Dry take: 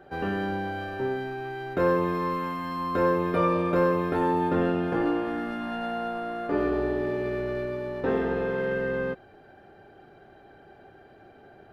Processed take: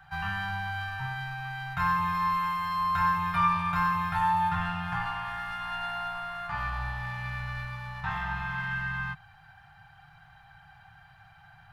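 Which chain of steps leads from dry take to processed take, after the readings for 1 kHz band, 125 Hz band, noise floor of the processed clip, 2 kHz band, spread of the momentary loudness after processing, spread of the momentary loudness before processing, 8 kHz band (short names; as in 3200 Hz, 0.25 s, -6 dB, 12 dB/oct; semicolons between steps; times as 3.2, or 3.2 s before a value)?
+2.5 dB, -0.5 dB, -56 dBFS, +3.0 dB, 10 LU, 8 LU, n/a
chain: elliptic band-stop 150–880 Hz, stop band 40 dB; gain +4 dB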